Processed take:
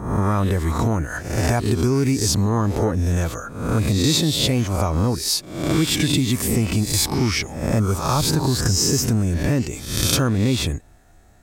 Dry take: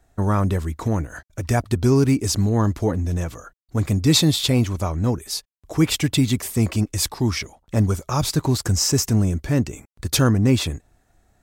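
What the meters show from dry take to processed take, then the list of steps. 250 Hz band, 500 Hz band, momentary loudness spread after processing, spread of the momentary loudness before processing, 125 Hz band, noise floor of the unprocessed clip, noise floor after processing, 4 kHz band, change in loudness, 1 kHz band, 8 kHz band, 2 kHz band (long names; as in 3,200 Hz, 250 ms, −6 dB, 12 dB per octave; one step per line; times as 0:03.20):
0.0 dB, +1.0 dB, 5 LU, 11 LU, 0.0 dB, −64 dBFS, −49 dBFS, +2.5 dB, +1.0 dB, +3.0 dB, +3.0 dB, +3.5 dB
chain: peak hold with a rise ahead of every peak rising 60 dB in 0.65 s
downward compressor 4 to 1, threshold −23 dBFS, peak gain reduction 11 dB
level +6 dB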